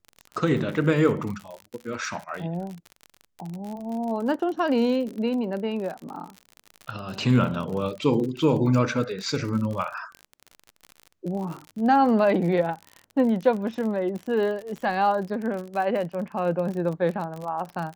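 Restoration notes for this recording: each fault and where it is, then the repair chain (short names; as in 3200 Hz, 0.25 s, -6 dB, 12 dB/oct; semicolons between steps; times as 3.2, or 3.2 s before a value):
crackle 50/s -31 dBFS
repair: de-click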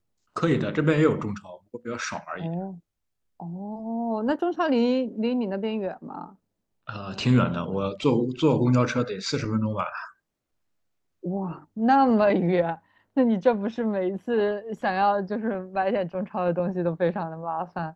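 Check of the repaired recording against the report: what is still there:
none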